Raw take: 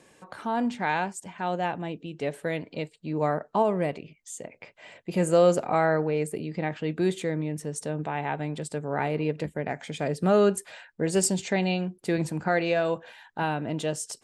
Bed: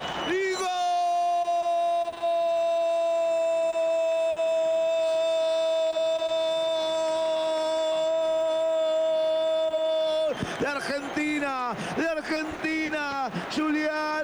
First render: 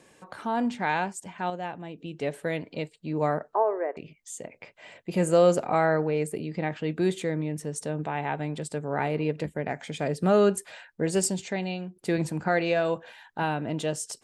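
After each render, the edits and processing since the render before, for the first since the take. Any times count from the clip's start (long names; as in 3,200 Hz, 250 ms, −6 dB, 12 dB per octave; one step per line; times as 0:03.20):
0:01.50–0:01.98: clip gain −6 dB
0:03.54–0:03.97: elliptic band-pass filter 370–1,800 Hz
0:11.05–0:11.96: fade out quadratic, to −6.5 dB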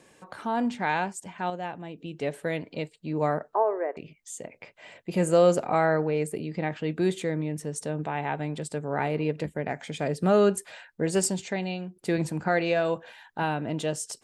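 0:11.10–0:11.54: dynamic equaliser 1,200 Hz, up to +4 dB, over −42 dBFS, Q 1.1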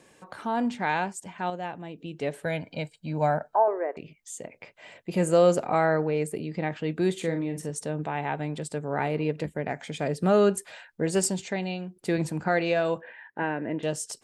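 0:02.45–0:03.68: comb filter 1.3 ms
0:07.18–0:07.71: double-tracking delay 42 ms −7.5 dB
0:13.01–0:13.83: loudspeaker in its box 140–2,400 Hz, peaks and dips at 150 Hz −4 dB, 350 Hz +4 dB, 510 Hz +3 dB, 750 Hz −5 dB, 1,300 Hz −8 dB, 1,800 Hz +9 dB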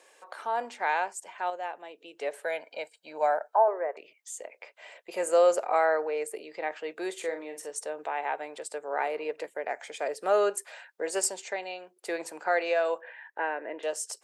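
high-pass filter 460 Hz 24 dB per octave
dynamic equaliser 3,500 Hz, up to −5 dB, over −52 dBFS, Q 1.8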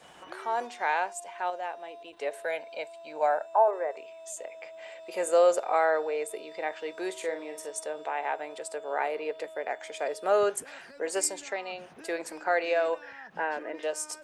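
mix in bed −22 dB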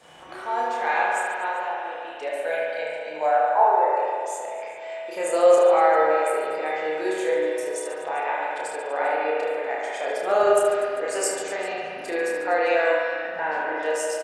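reverse bouncing-ball delay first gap 30 ms, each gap 1.5×, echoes 5
spring reverb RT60 2.4 s, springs 32/38 ms, chirp 55 ms, DRR −3 dB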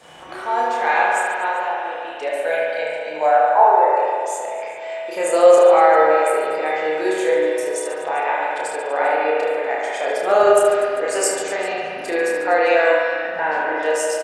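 level +5.5 dB
brickwall limiter −2 dBFS, peak gain reduction 2 dB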